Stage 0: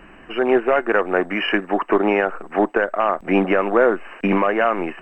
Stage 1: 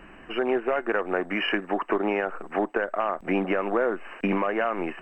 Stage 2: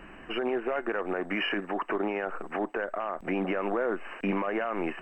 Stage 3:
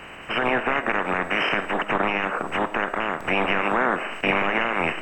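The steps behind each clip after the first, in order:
downward compressor 2.5 to 1, threshold −20 dBFS, peak gain reduction 6.5 dB; level −3 dB
brickwall limiter −20.5 dBFS, peak gain reduction 9 dB
ceiling on every frequency bin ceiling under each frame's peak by 22 dB; on a send at −12 dB: convolution reverb RT60 0.60 s, pre-delay 10 ms; on the sum: level +7 dB

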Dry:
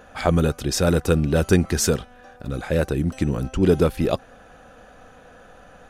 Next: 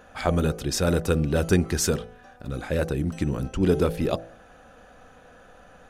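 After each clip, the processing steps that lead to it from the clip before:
hum removal 54.95 Hz, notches 15
level −3 dB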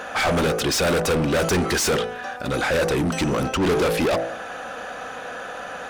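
mid-hump overdrive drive 33 dB, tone 5,700 Hz, clips at −7.5 dBFS
level −5.5 dB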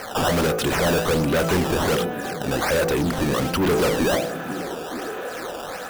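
sample-and-hold swept by an LFO 12×, swing 160% 1.3 Hz
echo through a band-pass that steps 461 ms, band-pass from 170 Hz, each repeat 0.7 octaves, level −6.5 dB

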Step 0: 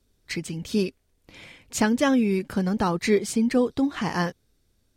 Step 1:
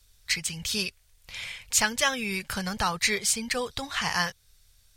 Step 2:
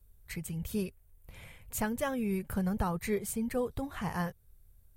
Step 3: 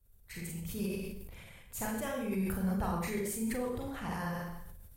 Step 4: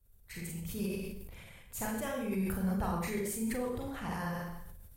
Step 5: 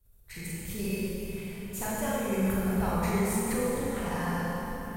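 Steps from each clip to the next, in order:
guitar amp tone stack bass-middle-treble 10-0-10; in parallel at 0 dB: downward compressor, threshold −44 dBFS, peak gain reduction 16.5 dB; on the sum: level +7 dB
drawn EQ curve 370 Hz 0 dB, 5,200 Hz −28 dB, 13,000 Hz −5 dB; level +2.5 dB
four-comb reverb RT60 0.64 s, combs from 32 ms, DRR −3 dB; harmonic and percussive parts rebalanced harmonic −4 dB; level that may fall only so fast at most 30 dB per second; level −5 dB
no processing that can be heard
dense smooth reverb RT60 4.2 s, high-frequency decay 0.75×, DRR −3 dB; level +1.5 dB

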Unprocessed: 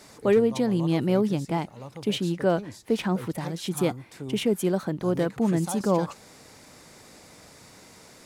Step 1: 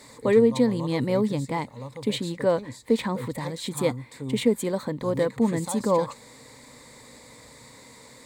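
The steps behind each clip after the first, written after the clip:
EQ curve with evenly spaced ripples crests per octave 1, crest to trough 10 dB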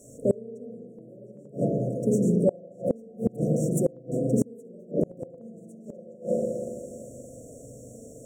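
spring reverb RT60 2 s, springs 40/57 ms, chirp 45 ms, DRR −6 dB
brick-wall band-stop 730–5,500 Hz
gate with flip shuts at −11 dBFS, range −28 dB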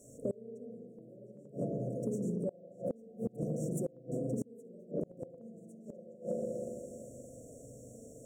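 downward compressor 10 to 1, threshold −25 dBFS, peak gain reduction 9.5 dB
level −6.5 dB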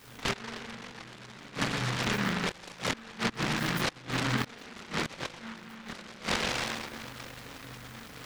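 multi-voice chorus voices 4, 0.25 Hz, delay 24 ms, depth 2.1 ms
short delay modulated by noise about 1,400 Hz, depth 0.5 ms
level +8.5 dB

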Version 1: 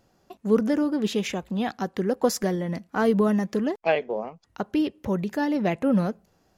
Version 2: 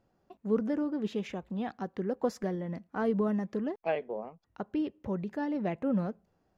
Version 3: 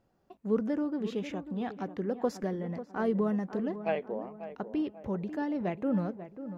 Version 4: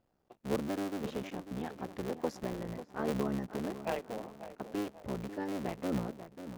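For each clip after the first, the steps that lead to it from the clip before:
low-pass filter 1,700 Hz 6 dB per octave; level −7.5 dB
tape delay 541 ms, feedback 48%, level −10 dB, low-pass 1,300 Hz
sub-harmonics by changed cycles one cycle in 3, muted; level −3 dB

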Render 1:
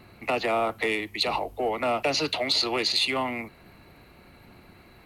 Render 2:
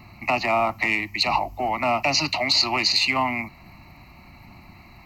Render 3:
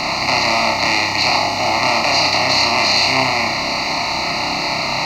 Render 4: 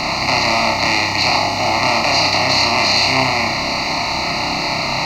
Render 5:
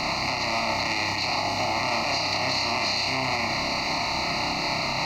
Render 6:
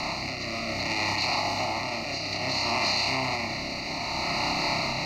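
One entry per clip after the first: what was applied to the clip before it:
phaser with its sweep stopped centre 2,300 Hz, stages 8; level +7.5 dB
compressor on every frequency bin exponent 0.2; on a send: flutter between parallel walls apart 5.2 metres, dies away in 0.47 s; on the sum: level −4 dB
low-shelf EQ 190 Hz +5 dB
brickwall limiter −9 dBFS, peak gain reduction 7.5 dB; level −7 dB
rotating-speaker cabinet horn 0.6 Hz

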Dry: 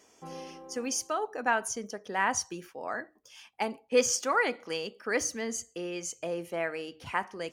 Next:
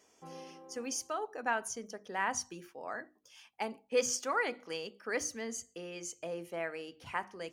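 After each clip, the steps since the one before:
mains-hum notches 50/100/150/200/250/300/350 Hz
level −5.5 dB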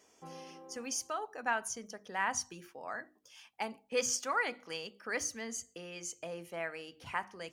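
dynamic equaliser 380 Hz, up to −6 dB, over −51 dBFS, Q 1
level +1 dB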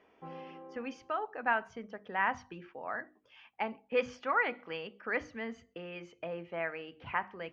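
low-pass filter 2,800 Hz 24 dB per octave
level +3 dB

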